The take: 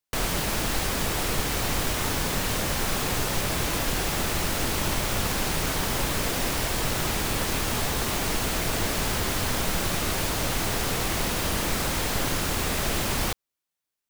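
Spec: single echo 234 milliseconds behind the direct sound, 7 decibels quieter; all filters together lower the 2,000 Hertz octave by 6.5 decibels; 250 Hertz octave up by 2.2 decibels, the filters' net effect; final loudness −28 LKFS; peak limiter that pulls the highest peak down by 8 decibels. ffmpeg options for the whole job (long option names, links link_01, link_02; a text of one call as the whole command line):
ffmpeg -i in.wav -af "equalizer=frequency=250:width_type=o:gain=3,equalizer=frequency=2000:width_type=o:gain=-8.5,alimiter=limit=-20.5dB:level=0:latency=1,aecho=1:1:234:0.447,volume=1.5dB" out.wav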